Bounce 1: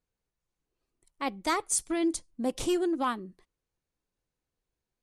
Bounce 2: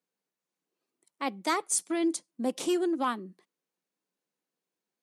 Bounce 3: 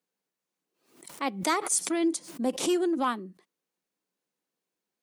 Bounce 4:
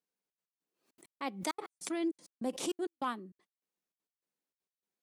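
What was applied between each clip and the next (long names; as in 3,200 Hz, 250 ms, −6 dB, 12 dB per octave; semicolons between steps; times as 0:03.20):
Butterworth high-pass 170 Hz 48 dB per octave
background raised ahead of every attack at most 110 dB per second; level +1.5 dB
gate pattern "xxxx.x.." 199 BPM −60 dB; level −7.5 dB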